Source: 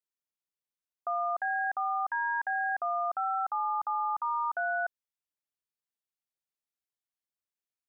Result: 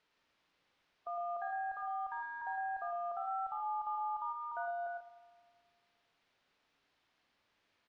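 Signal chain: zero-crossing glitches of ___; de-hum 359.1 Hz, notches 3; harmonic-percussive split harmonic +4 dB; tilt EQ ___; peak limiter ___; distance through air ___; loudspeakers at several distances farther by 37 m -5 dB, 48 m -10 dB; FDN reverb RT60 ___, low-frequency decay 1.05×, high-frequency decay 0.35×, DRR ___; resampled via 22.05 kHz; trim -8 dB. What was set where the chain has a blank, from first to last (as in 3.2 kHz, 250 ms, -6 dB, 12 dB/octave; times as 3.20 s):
-38 dBFS, -4.5 dB/octave, -25 dBFS, 300 m, 1.8 s, 13 dB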